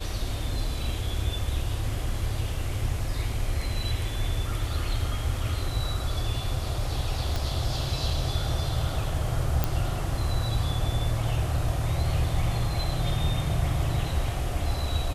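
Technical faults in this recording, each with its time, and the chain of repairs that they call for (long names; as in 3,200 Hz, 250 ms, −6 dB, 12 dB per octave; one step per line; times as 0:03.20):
0:07.36: click
0:09.64: click −10 dBFS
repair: click removal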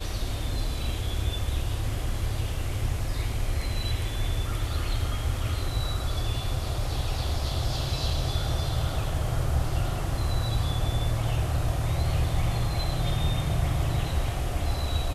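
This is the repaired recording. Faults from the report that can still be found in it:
0:07.36: click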